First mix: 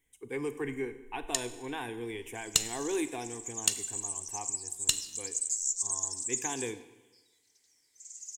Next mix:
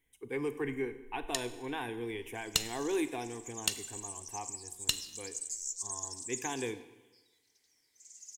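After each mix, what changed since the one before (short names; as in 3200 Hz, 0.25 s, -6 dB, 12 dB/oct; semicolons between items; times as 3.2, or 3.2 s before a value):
master: add bell 7600 Hz -8.5 dB 0.61 oct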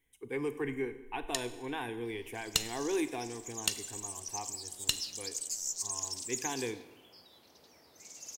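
second sound: remove band-pass 7800 Hz, Q 2.5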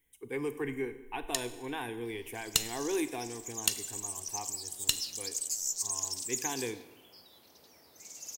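master: add high shelf 11000 Hz +11.5 dB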